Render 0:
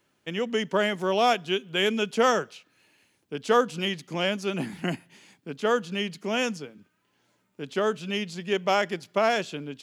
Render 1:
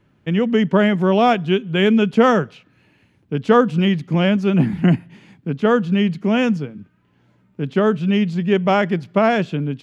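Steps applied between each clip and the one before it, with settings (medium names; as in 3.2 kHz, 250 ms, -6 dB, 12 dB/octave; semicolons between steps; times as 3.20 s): tone controls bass +15 dB, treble -15 dB; trim +6 dB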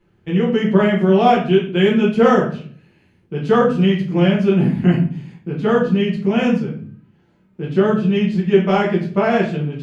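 simulated room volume 43 m³, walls mixed, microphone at 1.1 m; trim -6.5 dB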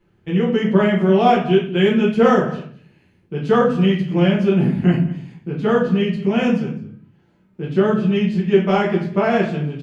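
delay 206 ms -18.5 dB; trim -1 dB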